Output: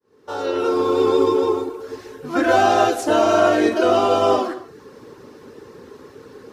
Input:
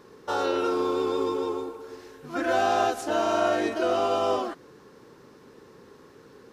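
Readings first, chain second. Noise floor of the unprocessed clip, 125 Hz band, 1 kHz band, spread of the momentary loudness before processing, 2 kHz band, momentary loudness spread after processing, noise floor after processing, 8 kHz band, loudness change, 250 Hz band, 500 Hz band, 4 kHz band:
-52 dBFS, +10.0 dB, +7.5 dB, 13 LU, +7.5 dB, 16 LU, -46 dBFS, +7.0 dB, +8.0 dB, +9.0 dB, +8.5 dB, +6.5 dB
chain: fade-in on the opening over 1.07 s; reverb removal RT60 0.58 s; peaking EQ 390 Hz +4 dB 1.1 oct; gated-style reverb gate 270 ms falling, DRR 7.5 dB; trim +8 dB

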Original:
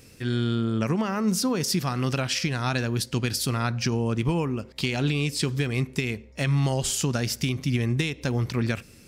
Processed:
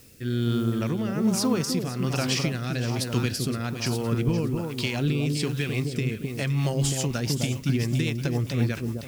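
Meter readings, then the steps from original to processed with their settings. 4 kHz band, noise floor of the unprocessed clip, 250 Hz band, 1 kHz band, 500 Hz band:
-1.5 dB, -50 dBFS, +0.5 dB, -3.5 dB, 0.0 dB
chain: echo whose repeats swap between lows and highs 258 ms, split 930 Hz, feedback 54%, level -3.5 dB; added noise blue -50 dBFS; rotary cabinet horn 1.2 Hz, later 7.5 Hz, at 6.16 s

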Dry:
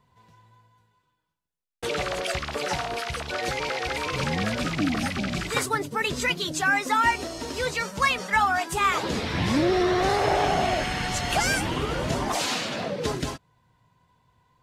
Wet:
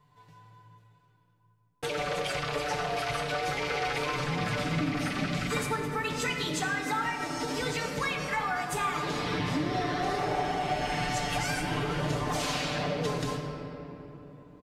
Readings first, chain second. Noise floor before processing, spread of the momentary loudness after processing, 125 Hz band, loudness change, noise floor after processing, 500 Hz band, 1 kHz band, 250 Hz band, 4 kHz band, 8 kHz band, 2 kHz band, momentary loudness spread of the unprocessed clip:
-74 dBFS, 4 LU, -2.0 dB, -5.0 dB, -65 dBFS, -5.0 dB, -5.0 dB, -4.5 dB, -5.0 dB, -6.0 dB, -5.5 dB, 7 LU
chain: comb 6.8 ms, depth 69%; compression, threshold -27 dBFS, peak gain reduction 12.5 dB; simulated room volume 200 m³, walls hard, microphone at 0.41 m; trim -3 dB

